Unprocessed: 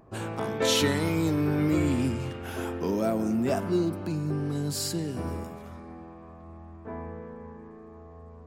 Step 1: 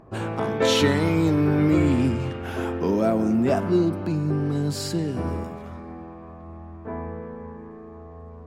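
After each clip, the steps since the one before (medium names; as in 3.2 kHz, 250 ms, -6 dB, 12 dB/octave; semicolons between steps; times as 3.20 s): low-pass 3.2 kHz 6 dB/octave; trim +5.5 dB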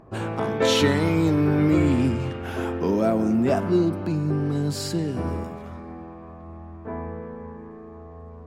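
no audible change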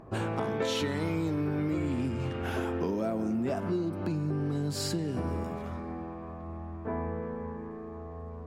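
compression 6:1, threshold -28 dBFS, peak gain reduction 13 dB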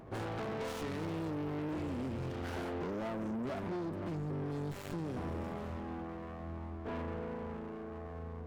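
valve stage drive 35 dB, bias 0.4; sliding maximum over 9 samples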